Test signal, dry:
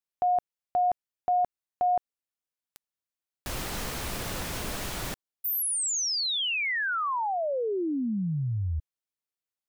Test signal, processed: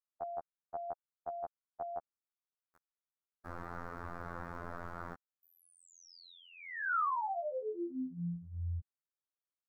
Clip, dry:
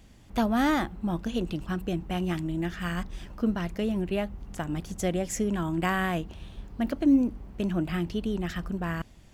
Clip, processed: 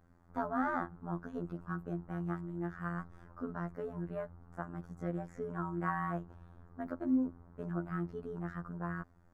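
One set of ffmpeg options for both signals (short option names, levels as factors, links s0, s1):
-filter_complex "[0:a]afftfilt=real='hypot(re,im)*cos(PI*b)':imag='0':win_size=2048:overlap=0.75,highshelf=f=2000:t=q:w=3:g=-13.5,acrossover=split=4900[s0][s1];[s1]acompressor=threshold=0.001:ratio=4:attack=1:release=60[s2];[s0][s2]amix=inputs=2:normalize=0,volume=0.447"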